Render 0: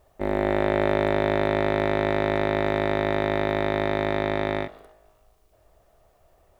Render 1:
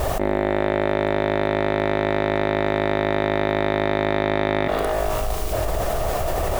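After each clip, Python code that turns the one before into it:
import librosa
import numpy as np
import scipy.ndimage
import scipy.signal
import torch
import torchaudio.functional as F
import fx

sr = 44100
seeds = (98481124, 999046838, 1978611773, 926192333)

y = fx.env_flatten(x, sr, amount_pct=100)
y = F.gain(torch.from_numpy(y), -1.0).numpy()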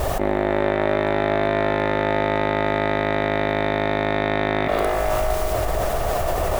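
y = fx.echo_wet_bandpass(x, sr, ms=129, feedback_pct=81, hz=1200.0, wet_db=-7.5)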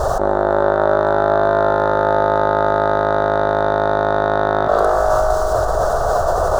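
y = fx.curve_eq(x, sr, hz=(130.0, 290.0, 450.0, 1000.0, 1500.0, 2200.0, 4000.0, 6400.0, 14000.0), db=(0, -5, 5, 6, 8, -24, -1, 3, -12))
y = F.gain(torch.from_numpy(y), 1.5).numpy()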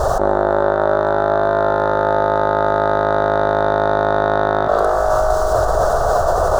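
y = fx.rider(x, sr, range_db=10, speed_s=0.5)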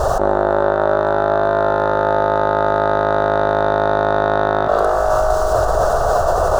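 y = fx.peak_eq(x, sr, hz=2700.0, db=6.5, octaves=0.27)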